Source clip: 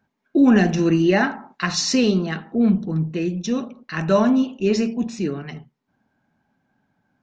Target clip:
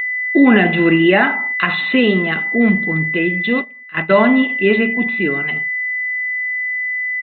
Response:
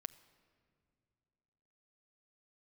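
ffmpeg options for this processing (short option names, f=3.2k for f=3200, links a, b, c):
-filter_complex "[0:a]aemphasis=mode=production:type=bsi,aeval=exprs='val(0)+0.0501*sin(2*PI*2000*n/s)':c=same,asplit=3[a][b][c];[a]afade=t=out:st=3.6:d=0.02[d];[b]agate=range=-17dB:threshold=-24dB:ratio=16:detection=peak,afade=t=in:st=3.6:d=0.02,afade=t=out:st=4.48:d=0.02[e];[c]afade=t=in:st=4.48:d=0.02[f];[d][e][f]amix=inputs=3:normalize=0,aresample=8000,aresample=44100,asettb=1/sr,asplit=3[g][h][i];[g]atrim=end=1.874[j];[h]atrim=start=1.87:end=2.37,asetpts=PTS-STARTPTS,afade=t=in:d=0.004:c=qsin,afade=t=out:st=0.496:d=0.004:c=qsin,acrossover=split=500[k][l];[l]acompressor=threshold=-24dB:ratio=3[m];[k][m]amix=inputs=2:normalize=0[n];[i]atrim=start=2.366[o];[j][n]acrossfade=d=0.004:c1=hsin:c2=qsin[p];[p][o]acrossfade=d=0.004:c1=qsin:c2=hsin,alimiter=level_in=9dB:limit=-1dB:release=50:level=0:latency=1,volume=-1dB"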